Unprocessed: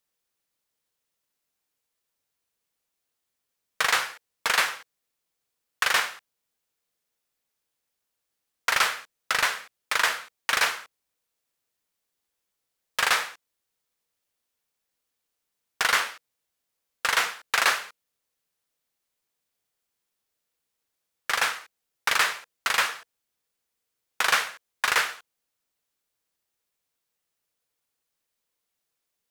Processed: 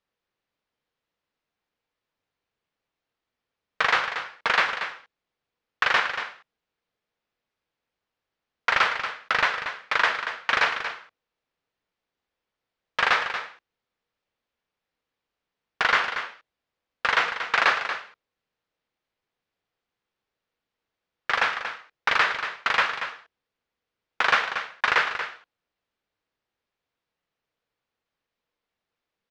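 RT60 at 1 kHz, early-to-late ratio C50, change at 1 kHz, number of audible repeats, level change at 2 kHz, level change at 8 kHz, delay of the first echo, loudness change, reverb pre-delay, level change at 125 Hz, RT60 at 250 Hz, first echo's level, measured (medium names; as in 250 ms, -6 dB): no reverb, no reverb, +3.0 dB, 1, +2.5 dB, -13.5 dB, 233 ms, +0.5 dB, no reverb, no reading, no reverb, -9.5 dB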